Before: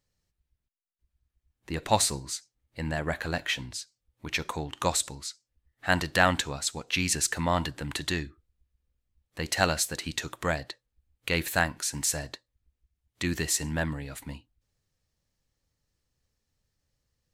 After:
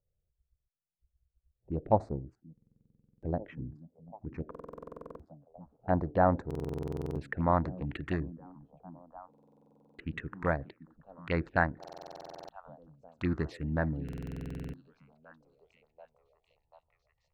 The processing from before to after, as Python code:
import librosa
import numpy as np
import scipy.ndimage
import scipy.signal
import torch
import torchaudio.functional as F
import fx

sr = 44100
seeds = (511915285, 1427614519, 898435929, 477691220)

p1 = fx.wiener(x, sr, points=41)
p2 = fx.filter_sweep_lowpass(p1, sr, from_hz=650.0, to_hz=1800.0, start_s=5.75, end_s=7.87, q=1.1)
p3 = p2 + fx.echo_stepped(p2, sr, ms=738, hz=220.0, octaves=0.7, feedback_pct=70, wet_db=-11.5, dry=0)
p4 = fx.env_phaser(p3, sr, low_hz=260.0, high_hz=3000.0, full_db=-27.0)
y = fx.buffer_glitch(p4, sr, at_s=(2.53, 4.5, 6.46, 9.29, 11.79, 14.04), block=2048, repeats=14)